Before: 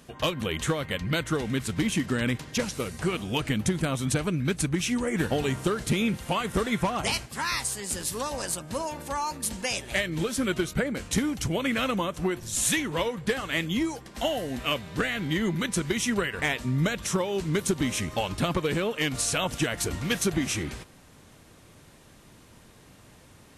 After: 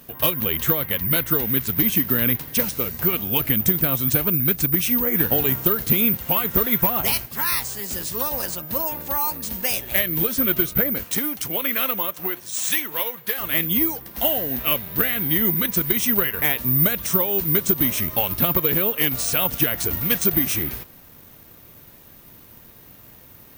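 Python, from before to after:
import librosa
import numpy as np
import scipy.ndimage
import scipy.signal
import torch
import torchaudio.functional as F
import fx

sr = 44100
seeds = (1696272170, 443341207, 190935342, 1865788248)

y = fx.highpass(x, sr, hz=fx.line((11.03, 390.0), (13.39, 1000.0)), slope=6, at=(11.03, 13.39), fade=0.02)
y = (np.kron(scipy.signal.resample_poly(y, 1, 3), np.eye(3)[0]) * 3)[:len(y)]
y = y * librosa.db_to_amplitude(2.0)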